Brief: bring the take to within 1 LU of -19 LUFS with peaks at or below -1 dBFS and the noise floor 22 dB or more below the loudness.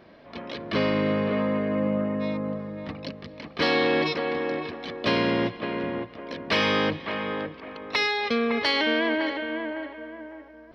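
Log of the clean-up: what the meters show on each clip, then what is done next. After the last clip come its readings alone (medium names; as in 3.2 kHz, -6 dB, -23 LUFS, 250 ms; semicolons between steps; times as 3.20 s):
loudness -26.0 LUFS; peak level -11.0 dBFS; loudness target -19.0 LUFS
-> trim +7 dB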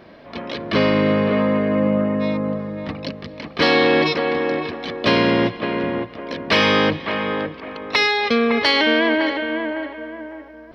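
loudness -19.0 LUFS; peak level -4.0 dBFS; noise floor -41 dBFS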